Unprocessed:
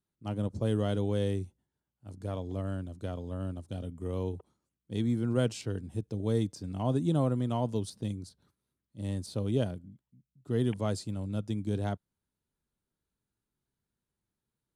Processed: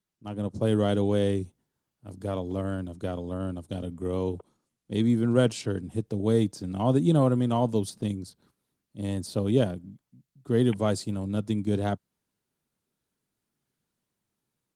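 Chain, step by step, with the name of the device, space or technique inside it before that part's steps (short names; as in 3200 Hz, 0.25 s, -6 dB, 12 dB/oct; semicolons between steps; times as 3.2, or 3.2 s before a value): video call (HPF 120 Hz 12 dB/oct; AGC gain up to 7 dB; Opus 20 kbps 48000 Hz)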